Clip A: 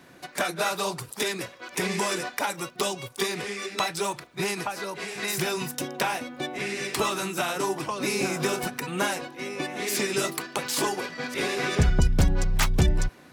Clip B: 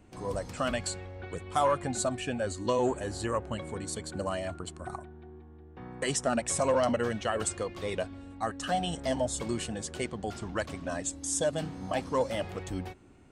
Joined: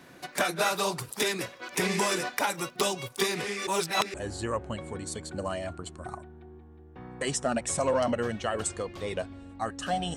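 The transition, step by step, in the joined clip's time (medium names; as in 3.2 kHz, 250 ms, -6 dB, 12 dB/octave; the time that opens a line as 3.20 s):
clip A
3.67–4.14 s: reverse
4.14 s: go over to clip B from 2.95 s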